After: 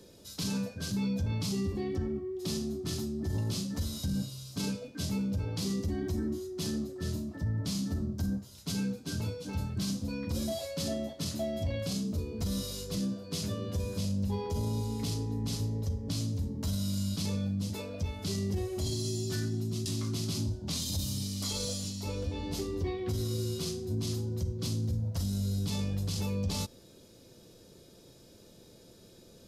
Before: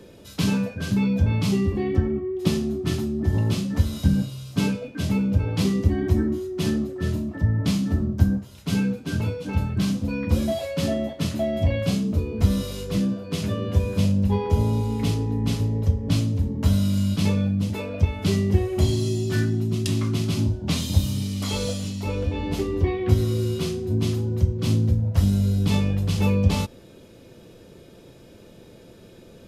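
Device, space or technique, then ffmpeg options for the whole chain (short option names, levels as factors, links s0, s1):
over-bright horn tweeter: -af "highshelf=f=3500:t=q:w=1.5:g=8,alimiter=limit=0.168:level=0:latency=1:release=17,volume=0.355"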